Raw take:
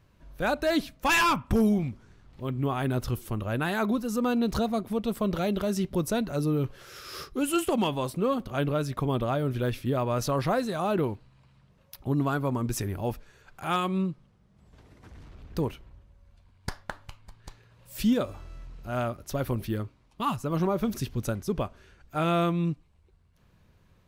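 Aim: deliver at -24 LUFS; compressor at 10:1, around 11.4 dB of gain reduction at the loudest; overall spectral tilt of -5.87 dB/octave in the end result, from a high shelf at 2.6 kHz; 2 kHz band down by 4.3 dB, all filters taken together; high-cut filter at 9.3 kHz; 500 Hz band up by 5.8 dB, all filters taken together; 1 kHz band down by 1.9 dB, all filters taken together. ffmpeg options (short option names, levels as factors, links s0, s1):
-af "lowpass=9300,equalizer=f=500:t=o:g=8.5,equalizer=f=1000:t=o:g=-4.5,equalizer=f=2000:t=o:g=-7.5,highshelf=f=2600:g=4.5,acompressor=threshold=0.0398:ratio=10,volume=2.99"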